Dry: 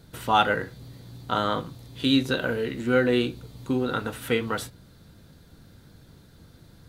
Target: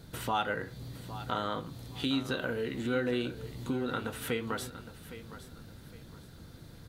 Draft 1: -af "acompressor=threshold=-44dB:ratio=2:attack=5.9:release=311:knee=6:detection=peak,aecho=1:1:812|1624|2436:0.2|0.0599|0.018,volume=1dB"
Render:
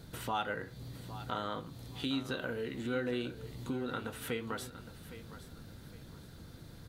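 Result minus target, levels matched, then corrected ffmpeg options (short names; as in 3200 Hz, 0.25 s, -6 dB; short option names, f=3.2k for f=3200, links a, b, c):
compressor: peak gain reduction +4 dB
-af "acompressor=threshold=-36dB:ratio=2:attack=5.9:release=311:knee=6:detection=peak,aecho=1:1:812|1624|2436:0.2|0.0599|0.018,volume=1dB"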